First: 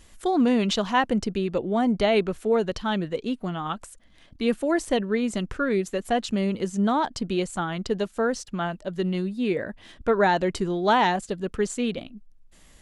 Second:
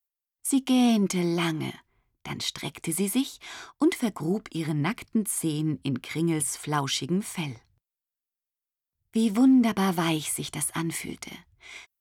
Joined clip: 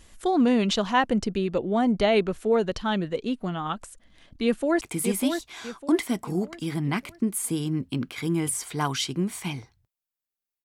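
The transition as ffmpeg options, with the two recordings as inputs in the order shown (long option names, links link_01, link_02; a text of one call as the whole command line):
ffmpeg -i cue0.wav -i cue1.wav -filter_complex "[0:a]apad=whole_dur=10.64,atrim=end=10.64,atrim=end=4.812[link_01];[1:a]atrim=start=2.738:end=8.57[link_02];[link_01][link_02]acrossfade=duration=0.004:curve1=hsin:curve2=hsin,asplit=2[link_03][link_04];[link_04]afade=type=in:start_time=4.44:duration=0.01,afade=type=out:start_time=4.81:duration=0.01,aecho=0:1:600|1200|1800|2400|3000:0.473151|0.189261|0.0757042|0.0302817|0.0121127[link_05];[link_03][link_05]amix=inputs=2:normalize=0" out.wav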